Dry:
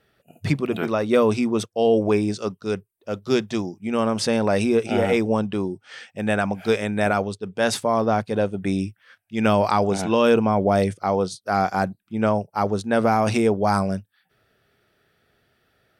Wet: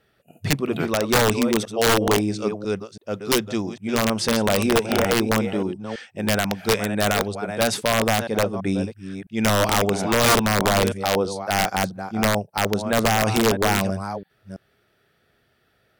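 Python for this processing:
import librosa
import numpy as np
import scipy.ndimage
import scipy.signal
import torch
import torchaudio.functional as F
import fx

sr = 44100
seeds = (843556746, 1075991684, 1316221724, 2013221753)

y = fx.reverse_delay(x, sr, ms=331, wet_db=-10.0)
y = (np.mod(10.0 ** (11.0 / 20.0) * y + 1.0, 2.0) - 1.0) / 10.0 ** (11.0 / 20.0)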